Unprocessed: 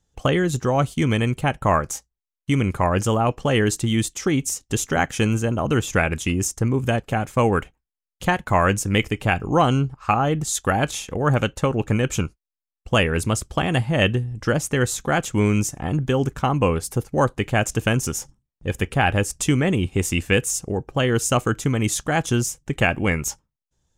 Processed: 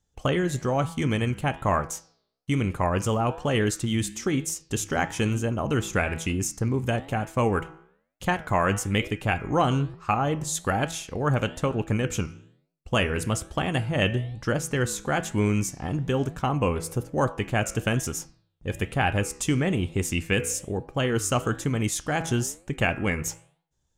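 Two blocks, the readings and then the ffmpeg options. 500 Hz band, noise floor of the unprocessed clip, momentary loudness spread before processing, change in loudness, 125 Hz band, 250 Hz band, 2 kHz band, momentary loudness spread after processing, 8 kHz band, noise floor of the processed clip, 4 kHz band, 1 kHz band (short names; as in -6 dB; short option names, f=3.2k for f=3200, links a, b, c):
-4.5 dB, under -85 dBFS, 5 LU, -4.5 dB, -4.5 dB, -4.5 dB, -5.0 dB, 5 LU, -4.5 dB, -73 dBFS, -4.5 dB, -4.5 dB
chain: -af "bandreject=f=163.9:t=h:w=4,bandreject=f=327.8:t=h:w=4,bandreject=f=491.7:t=h:w=4,bandreject=f=655.6:t=h:w=4,bandreject=f=819.5:t=h:w=4,bandreject=f=983.4:t=h:w=4,bandreject=f=1.1473k:t=h:w=4,bandreject=f=1.3112k:t=h:w=4,bandreject=f=1.4751k:t=h:w=4,bandreject=f=1.639k:t=h:w=4,bandreject=f=1.8029k:t=h:w=4,bandreject=f=1.9668k:t=h:w=4,bandreject=f=2.1307k:t=h:w=4,bandreject=f=2.2946k:t=h:w=4,bandreject=f=2.4585k:t=h:w=4,bandreject=f=2.6224k:t=h:w=4,bandreject=f=2.7863k:t=h:w=4,bandreject=f=2.9502k:t=h:w=4,bandreject=f=3.1141k:t=h:w=4,bandreject=f=3.278k:t=h:w=4,flanger=delay=8.5:depth=9.2:regen=-87:speed=1.1:shape=triangular"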